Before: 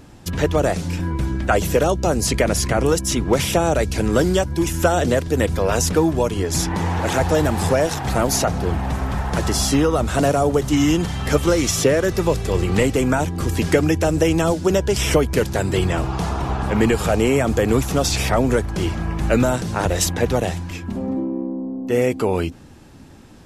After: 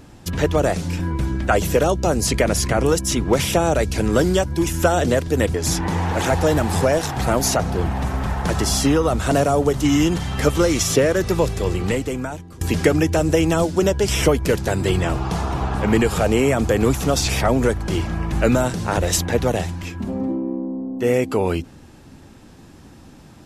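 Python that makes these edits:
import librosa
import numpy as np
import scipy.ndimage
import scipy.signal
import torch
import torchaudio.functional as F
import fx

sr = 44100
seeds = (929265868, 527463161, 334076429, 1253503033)

y = fx.edit(x, sr, fx.cut(start_s=5.54, length_s=0.88),
    fx.fade_out_to(start_s=12.34, length_s=1.15, floor_db=-22.0), tone=tone)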